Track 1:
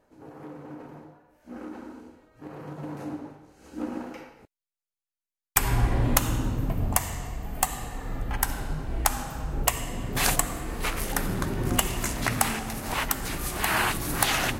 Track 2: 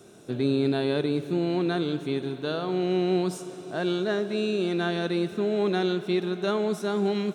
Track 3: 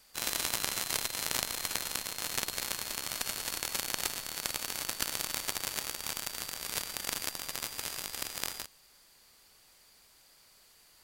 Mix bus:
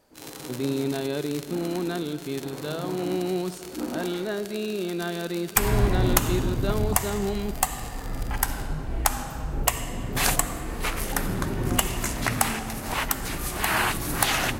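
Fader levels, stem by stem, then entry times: +1.0 dB, -3.0 dB, -9.5 dB; 0.00 s, 0.20 s, 0.00 s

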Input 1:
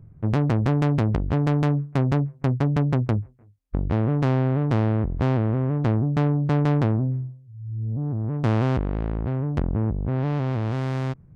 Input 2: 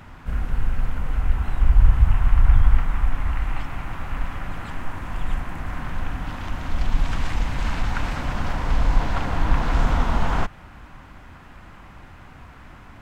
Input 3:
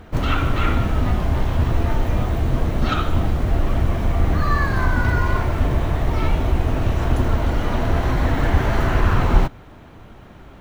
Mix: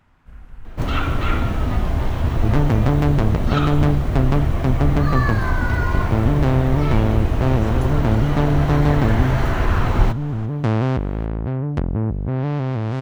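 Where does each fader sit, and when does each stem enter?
+2.5 dB, -15.5 dB, -1.0 dB; 2.20 s, 0.00 s, 0.65 s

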